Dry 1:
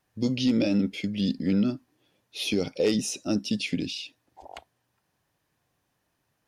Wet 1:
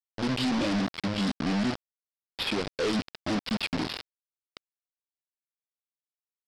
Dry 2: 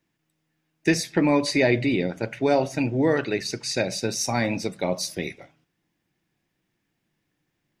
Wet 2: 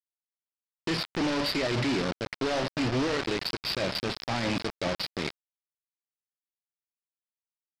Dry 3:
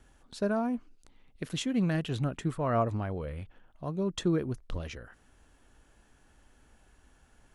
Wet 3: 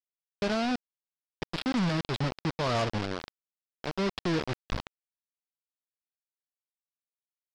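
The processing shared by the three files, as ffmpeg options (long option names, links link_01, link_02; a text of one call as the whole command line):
ffmpeg -i in.wav -af "alimiter=limit=-18dB:level=0:latency=1:release=28,aresample=11025,acrusher=bits=4:mix=0:aa=0.000001,aresample=44100,aeval=exprs='0.168*sin(PI/2*2*val(0)/0.168)':channel_layout=same,volume=-8dB" out.wav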